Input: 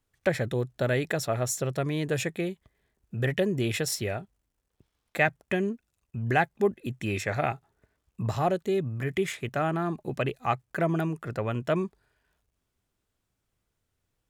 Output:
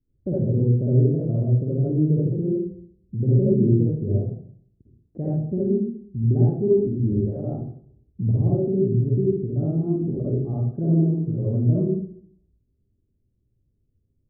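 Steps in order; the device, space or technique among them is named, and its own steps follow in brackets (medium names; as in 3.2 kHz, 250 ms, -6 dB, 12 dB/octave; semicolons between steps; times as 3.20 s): 7.12–7.53 s: high-pass 180 Hz 12 dB/octave; next room (low-pass 340 Hz 24 dB/octave; reverberation RT60 0.60 s, pre-delay 46 ms, DRR -7 dB); trim +5 dB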